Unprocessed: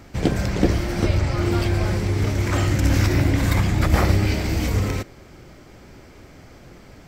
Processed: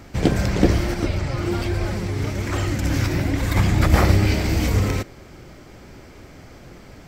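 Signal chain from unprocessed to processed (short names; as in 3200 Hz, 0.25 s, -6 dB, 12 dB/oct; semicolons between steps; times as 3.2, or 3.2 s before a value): 0.94–3.56 flange 1.2 Hz, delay 1.8 ms, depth 6.1 ms, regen +51%; gain +2 dB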